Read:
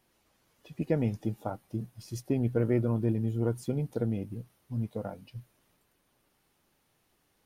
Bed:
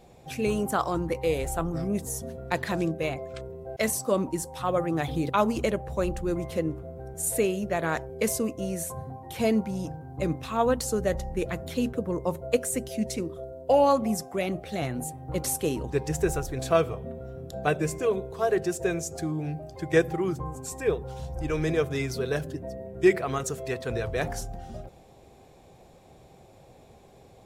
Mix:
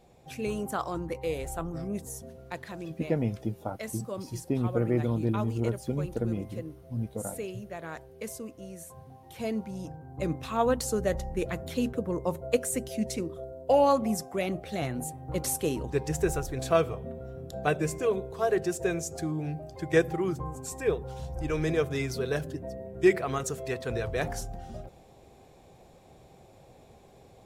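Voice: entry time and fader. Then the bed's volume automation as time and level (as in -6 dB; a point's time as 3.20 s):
2.20 s, 0.0 dB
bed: 1.96 s -5.5 dB
2.73 s -12 dB
8.93 s -12 dB
10.43 s -1.5 dB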